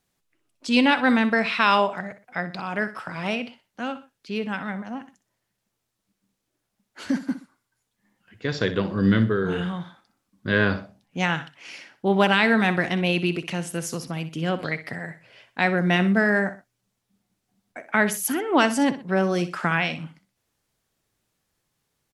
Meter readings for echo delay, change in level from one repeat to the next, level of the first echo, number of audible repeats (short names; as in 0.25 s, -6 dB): 62 ms, -9.5 dB, -13.5 dB, 2